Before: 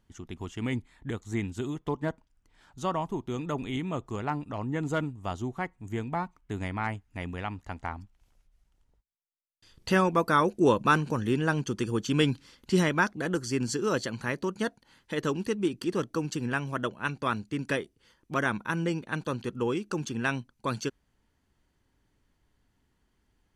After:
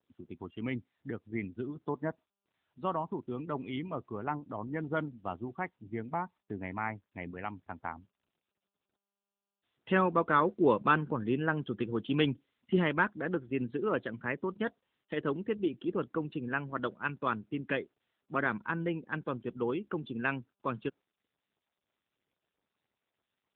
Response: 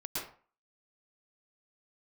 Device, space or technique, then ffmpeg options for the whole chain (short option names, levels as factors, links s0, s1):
mobile call with aggressive noise cancelling: -af "highpass=f=170:p=1,afftdn=nr=23:nf=-41,volume=0.794" -ar 8000 -c:a libopencore_amrnb -b:a 10200